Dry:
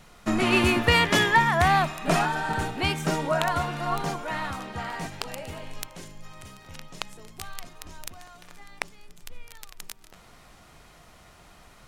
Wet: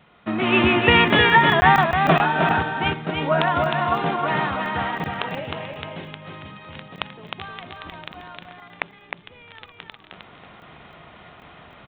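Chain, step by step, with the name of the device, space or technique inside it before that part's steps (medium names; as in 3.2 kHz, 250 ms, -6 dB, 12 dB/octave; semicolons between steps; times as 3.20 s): 2.62–3.21 s: gate -22 dBFS, range -8 dB; call with lost packets (high-pass 100 Hz 12 dB/octave; resampled via 8 kHz; level rider gain up to 8.5 dB; lost packets random); delay 310 ms -4 dB; trim -1 dB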